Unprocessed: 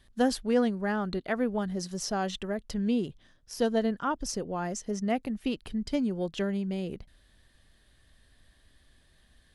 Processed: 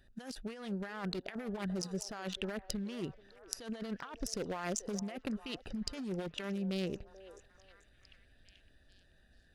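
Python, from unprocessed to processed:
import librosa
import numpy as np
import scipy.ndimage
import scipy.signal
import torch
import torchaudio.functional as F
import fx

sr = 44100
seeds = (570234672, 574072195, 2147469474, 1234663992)

y = fx.wiener(x, sr, points=41)
y = fx.tilt_shelf(y, sr, db=-10.0, hz=800.0)
y = fx.over_compress(y, sr, threshold_db=-41.0, ratio=-1.0)
y = fx.echo_stepped(y, sr, ms=435, hz=580.0, octaves=0.7, feedback_pct=70, wet_db=-11)
y = y * librosa.db_to_amplitude(1.0)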